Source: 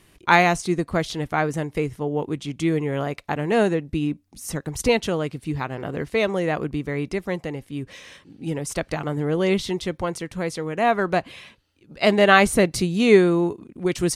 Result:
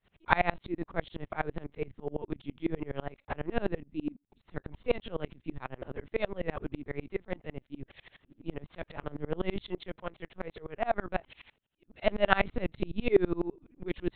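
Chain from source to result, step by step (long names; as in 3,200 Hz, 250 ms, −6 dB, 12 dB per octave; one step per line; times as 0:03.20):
0:09.78–0:12.34: high-pass filter 270 Hz → 78 Hz 6 dB per octave
linear-prediction vocoder at 8 kHz pitch kept
tremolo with a ramp in dB swelling 12 Hz, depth 30 dB
level −3 dB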